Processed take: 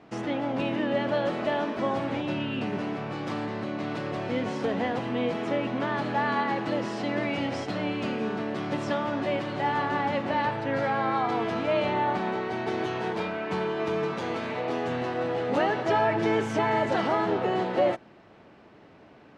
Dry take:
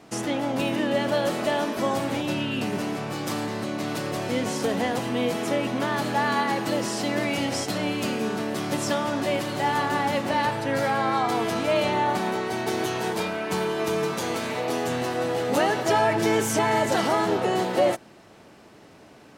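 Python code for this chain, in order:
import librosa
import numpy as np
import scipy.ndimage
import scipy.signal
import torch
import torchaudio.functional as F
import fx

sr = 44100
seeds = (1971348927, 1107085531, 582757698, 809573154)

y = scipy.signal.sosfilt(scipy.signal.butter(2, 3000.0, 'lowpass', fs=sr, output='sos'), x)
y = F.gain(torch.from_numpy(y), -2.5).numpy()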